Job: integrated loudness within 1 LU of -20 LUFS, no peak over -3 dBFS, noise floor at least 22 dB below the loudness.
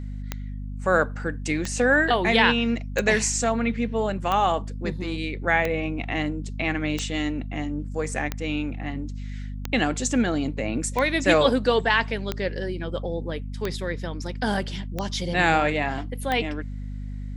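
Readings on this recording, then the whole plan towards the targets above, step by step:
clicks 13; hum 50 Hz; harmonics up to 250 Hz; hum level -30 dBFS; loudness -24.5 LUFS; peak -3.5 dBFS; loudness target -20.0 LUFS
-> de-click; de-hum 50 Hz, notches 5; gain +4.5 dB; limiter -3 dBFS

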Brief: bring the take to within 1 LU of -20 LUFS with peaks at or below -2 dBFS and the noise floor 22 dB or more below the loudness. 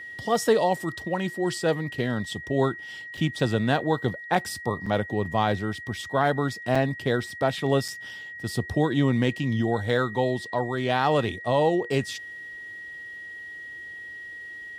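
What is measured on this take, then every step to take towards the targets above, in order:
dropouts 4; longest dropout 4.6 ms; steady tone 1900 Hz; tone level -37 dBFS; loudness -26.0 LUFS; peak -9.5 dBFS; loudness target -20.0 LUFS
-> interpolate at 3.17/4.86/6.75/7.88, 4.6 ms; notch 1900 Hz, Q 30; gain +6 dB

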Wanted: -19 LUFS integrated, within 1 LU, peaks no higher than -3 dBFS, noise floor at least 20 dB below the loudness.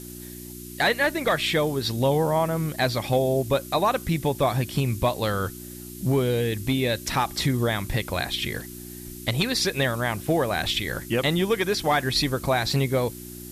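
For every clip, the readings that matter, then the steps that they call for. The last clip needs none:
hum 60 Hz; harmonics up to 360 Hz; hum level -37 dBFS; noise floor -40 dBFS; noise floor target -45 dBFS; loudness -24.5 LUFS; peak -11.5 dBFS; loudness target -19.0 LUFS
-> de-hum 60 Hz, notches 6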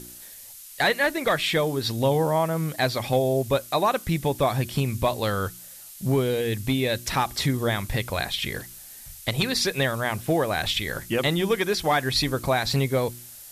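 hum none; noise floor -44 dBFS; noise floor target -45 dBFS
-> noise print and reduce 6 dB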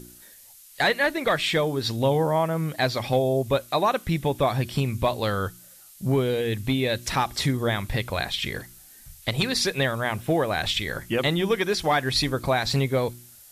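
noise floor -50 dBFS; loudness -24.5 LUFS; peak -11.5 dBFS; loudness target -19.0 LUFS
-> gain +5.5 dB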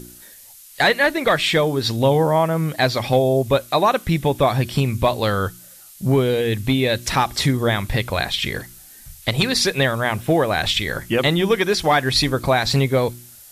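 loudness -19.0 LUFS; peak -6.0 dBFS; noise floor -44 dBFS

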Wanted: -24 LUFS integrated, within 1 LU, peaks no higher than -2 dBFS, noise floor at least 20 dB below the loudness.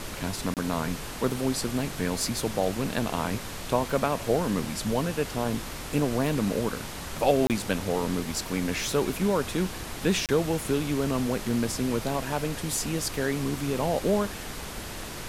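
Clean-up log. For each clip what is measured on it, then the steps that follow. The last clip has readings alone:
dropouts 3; longest dropout 28 ms; noise floor -38 dBFS; noise floor target -48 dBFS; loudness -28.0 LUFS; peak -9.5 dBFS; loudness target -24.0 LUFS
-> interpolate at 0.54/7.47/10.26, 28 ms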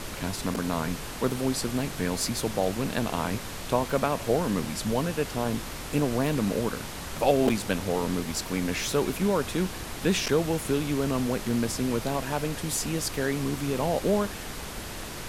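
dropouts 0; noise floor -38 dBFS; noise floor target -48 dBFS
-> noise print and reduce 10 dB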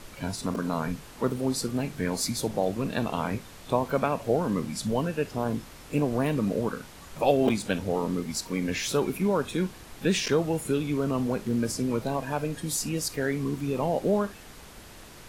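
noise floor -47 dBFS; noise floor target -49 dBFS
-> noise print and reduce 6 dB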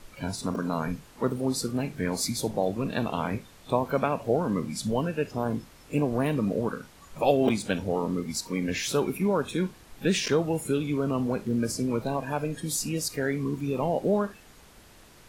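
noise floor -53 dBFS; loudness -28.5 LUFS; peak -9.5 dBFS; loudness target -24.0 LUFS
-> gain +4.5 dB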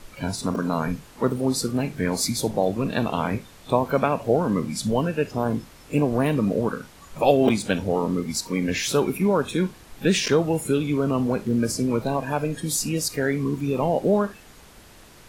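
loudness -24.0 LUFS; peak -5.0 dBFS; noise floor -49 dBFS

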